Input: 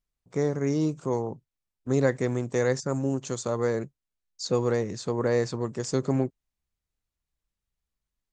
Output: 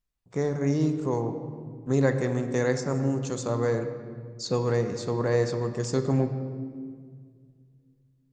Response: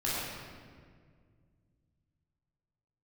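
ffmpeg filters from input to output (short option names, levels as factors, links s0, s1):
-filter_complex "[0:a]asplit=2[s0][s1];[1:a]atrim=start_sample=2205,lowpass=6100[s2];[s1][s2]afir=irnorm=-1:irlink=0,volume=0.2[s3];[s0][s3]amix=inputs=2:normalize=0,volume=0.841"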